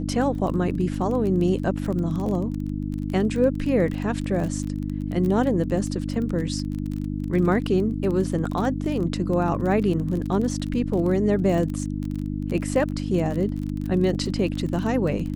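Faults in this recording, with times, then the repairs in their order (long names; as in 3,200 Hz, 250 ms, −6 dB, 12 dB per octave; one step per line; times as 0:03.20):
surface crackle 24 per second −28 dBFS
mains hum 50 Hz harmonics 6 −28 dBFS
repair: click removal
hum removal 50 Hz, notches 6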